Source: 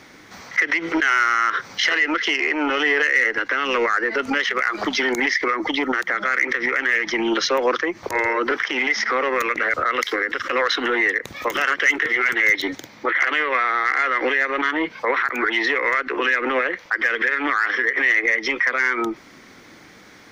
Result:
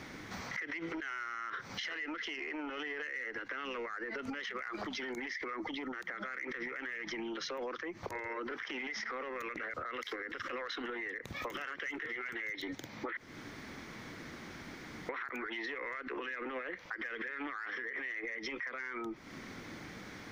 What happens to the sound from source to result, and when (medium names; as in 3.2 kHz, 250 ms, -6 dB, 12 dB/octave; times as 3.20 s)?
13.17–15.09 s: room tone
whole clip: tone controls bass +6 dB, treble -3 dB; peak limiter -18 dBFS; compression 5:1, threshold -36 dBFS; trim -2.5 dB